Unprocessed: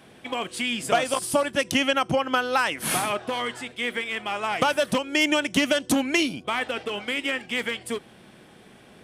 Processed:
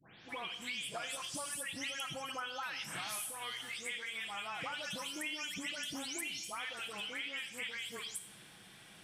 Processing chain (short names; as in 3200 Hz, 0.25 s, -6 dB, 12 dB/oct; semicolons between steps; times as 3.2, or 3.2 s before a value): spectral delay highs late, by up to 0.29 s; passive tone stack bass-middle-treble 5-5-5; compressor 6:1, threshold -47 dBFS, peak gain reduction 16.5 dB; on a send: reverb RT60 1.1 s, pre-delay 28 ms, DRR 11 dB; on the sum: gain +7.5 dB